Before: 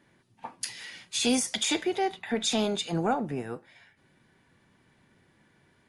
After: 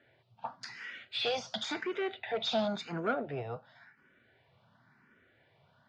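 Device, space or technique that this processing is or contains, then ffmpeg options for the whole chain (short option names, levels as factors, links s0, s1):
barber-pole phaser into a guitar amplifier: -filter_complex "[0:a]asplit=2[s0][s1];[s1]afreqshift=0.94[s2];[s0][s2]amix=inputs=2:normalize=1,asoftclip=type=tanh:threshold=0.0501,highpass=84,equalizer=f=120:t=q:w=4:g=4,equalizer=f=180:t=q:w=4:g=-4,equalizer=f=320:t=q:w=4:g=-7,equalizer=f=650:t=q:w=4:g=7,equalizer=f=1400:t=q:w=4:g=8,lowpass=f=4500:w=0.5412,lowpass=f=4500:w=1.3066"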